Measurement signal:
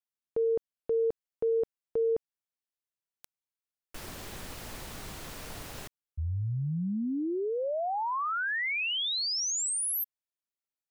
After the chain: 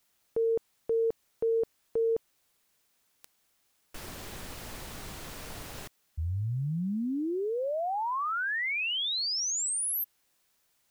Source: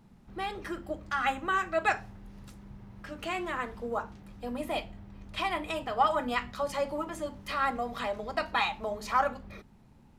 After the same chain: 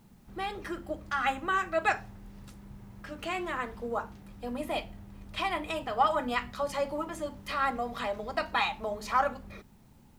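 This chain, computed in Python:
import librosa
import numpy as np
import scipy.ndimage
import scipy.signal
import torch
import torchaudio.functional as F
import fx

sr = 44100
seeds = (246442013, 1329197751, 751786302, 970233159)

y = fx.quant_dither(x, sr, seeds[0], bits=12, dither='triangular')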